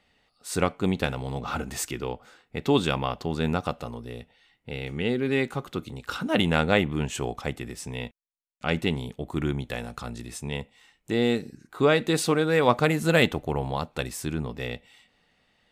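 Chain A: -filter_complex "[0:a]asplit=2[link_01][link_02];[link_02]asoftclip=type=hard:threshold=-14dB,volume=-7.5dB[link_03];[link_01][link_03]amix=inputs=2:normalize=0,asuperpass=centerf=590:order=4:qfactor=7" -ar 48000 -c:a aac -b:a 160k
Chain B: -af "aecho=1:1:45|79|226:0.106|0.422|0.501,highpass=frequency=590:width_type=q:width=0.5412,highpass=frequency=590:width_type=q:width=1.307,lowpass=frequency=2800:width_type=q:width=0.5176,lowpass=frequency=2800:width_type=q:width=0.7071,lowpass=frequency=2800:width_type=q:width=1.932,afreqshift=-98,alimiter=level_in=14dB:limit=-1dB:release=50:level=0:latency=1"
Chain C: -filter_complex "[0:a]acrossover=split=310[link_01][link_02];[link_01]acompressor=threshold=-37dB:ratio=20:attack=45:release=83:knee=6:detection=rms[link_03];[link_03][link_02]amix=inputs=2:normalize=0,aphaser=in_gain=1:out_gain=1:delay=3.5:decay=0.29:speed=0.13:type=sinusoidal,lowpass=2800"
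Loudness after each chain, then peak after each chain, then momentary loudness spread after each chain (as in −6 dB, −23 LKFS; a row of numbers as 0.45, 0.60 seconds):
−35.5, −18.5, −29.0 LKFS; −15.5, −1.0, −5.5 dBFS; 22, 15, 15 LU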